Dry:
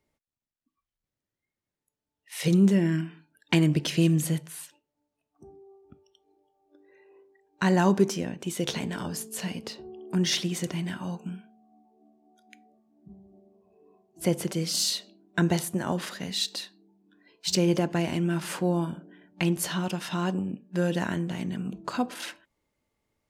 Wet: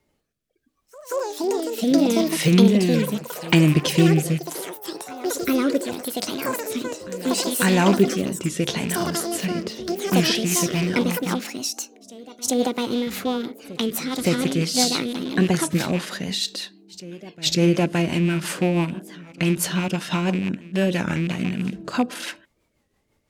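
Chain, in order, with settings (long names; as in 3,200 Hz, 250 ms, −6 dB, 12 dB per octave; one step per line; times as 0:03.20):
loose part that buzzes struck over −30 dBFS, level −27 dBFS
in parallel at 0 dB: downward compressor, threshold −36 dBFS, peak gain reduction 19 dB
on the sum: backwards echo 552 ms −19.5 dB
delay with pitch and tempo change per echo 87 ms, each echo +6 semitones, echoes 3
rotating-speaker cabinet horn 0.75 Hz, later 6 Hz, at 0:10.00
wow of a warped record 33 1/3 rpm, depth 160 cents
level +5 dB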